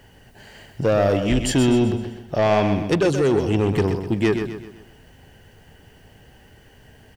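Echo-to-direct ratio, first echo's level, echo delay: -7.0 dB, -8.0 dB, 0.127 s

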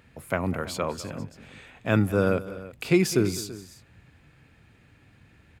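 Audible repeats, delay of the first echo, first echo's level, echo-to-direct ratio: 2, 0.204 s, -17.0 dB, -14.0 dB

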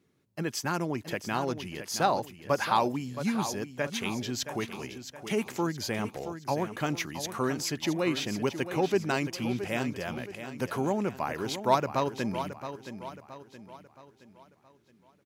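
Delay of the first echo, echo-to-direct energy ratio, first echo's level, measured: 0.671 s, -9.5 dB, -10.5 dB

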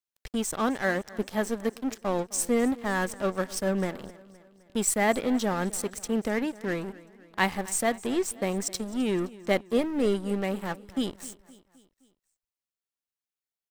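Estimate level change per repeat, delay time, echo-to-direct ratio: -5.5 dB, 0.259 s, -18.5 dB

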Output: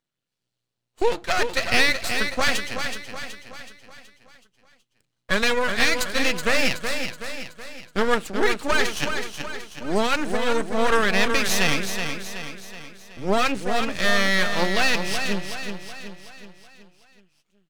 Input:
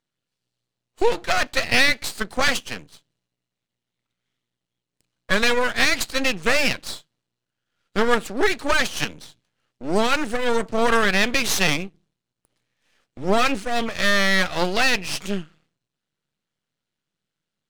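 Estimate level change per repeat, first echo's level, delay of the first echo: -6.0 dB, -7.0 dB, 0.374 s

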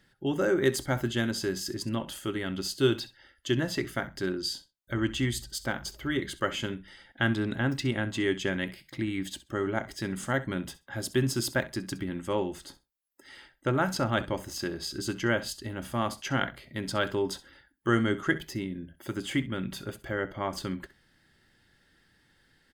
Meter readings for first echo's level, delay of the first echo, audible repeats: -17.0 dB, 65 ms, 2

